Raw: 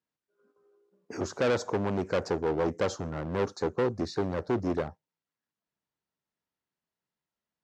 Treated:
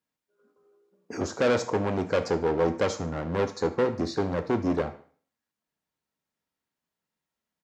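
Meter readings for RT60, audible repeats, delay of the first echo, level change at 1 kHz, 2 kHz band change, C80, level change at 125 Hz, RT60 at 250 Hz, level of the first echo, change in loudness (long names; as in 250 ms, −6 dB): 0.50 s, 1, 73 ms, +3.5 dB, +3.5 dB, 18.0 dB, +2.5 dB, 0.50 s, −19.0 dB, +3.0 dB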